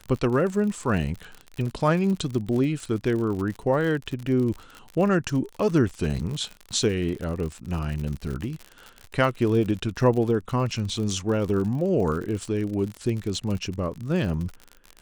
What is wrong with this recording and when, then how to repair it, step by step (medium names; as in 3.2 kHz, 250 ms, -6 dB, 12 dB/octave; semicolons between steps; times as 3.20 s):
crackle 58 per s -30 dBFS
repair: de-click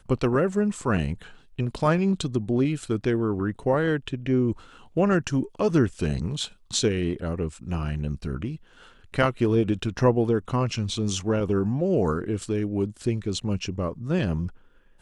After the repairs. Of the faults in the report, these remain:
nothing left